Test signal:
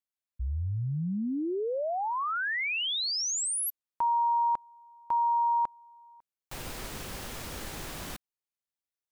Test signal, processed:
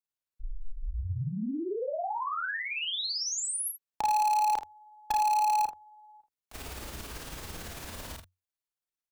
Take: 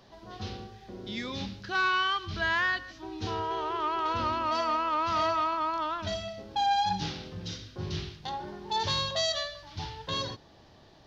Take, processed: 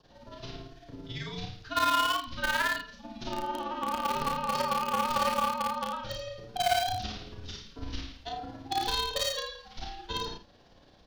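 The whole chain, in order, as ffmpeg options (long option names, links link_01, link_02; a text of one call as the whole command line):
ffmpeg -i in.wav -filter_complex "[0:a]adynamicequalizer=threshold=0.00316:dfrequency=2200:dqfactor=4.3:tfrequency=2200:tqfactor=4.3:attack=5:release=100:ratio=0.375:range=2.5:mode=cutabove:tftype=bell,tremolo=f=18:d=0.89,afreqshift=-91,asplit=2[link_01][link_02];[link_02]acrusher=bits=3:mix=0:aa=0.000001,volume=-6.5dB[link_03];[link_01][link_03]amix=inputs=2:normalize=0,aecho=1:1:33|56|79:0.668|0.141|0.282" out.wav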